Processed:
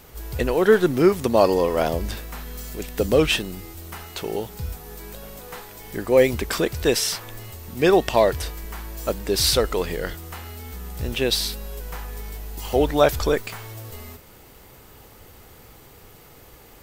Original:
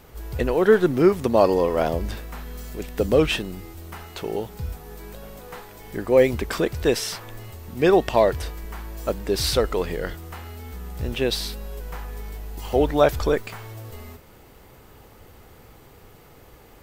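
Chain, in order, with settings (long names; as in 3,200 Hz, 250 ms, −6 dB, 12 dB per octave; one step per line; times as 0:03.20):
high-shelf EQ 3,000 Hz +7 dB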